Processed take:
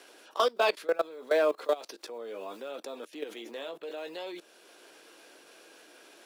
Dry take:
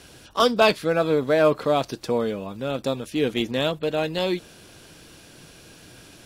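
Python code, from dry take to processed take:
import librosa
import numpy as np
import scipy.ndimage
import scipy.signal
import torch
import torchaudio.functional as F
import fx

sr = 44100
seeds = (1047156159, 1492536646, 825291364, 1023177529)

y = fx.block_float(x, sr, bits=7)
y = fx.chorus_voices(y, sr, voices=2, hz=0.68, base_ms=15, depth_ms=3.2, mix_pct=25)
y = fx.level_steps(y, sr, step_db=21)
y = scipy.signal.sosfilt(scipy.signal.butter(4, 350.0, 'highpass', fs=sr, output='sos'), y)
y = fx.band_squash(y, sr, depth_pct=40)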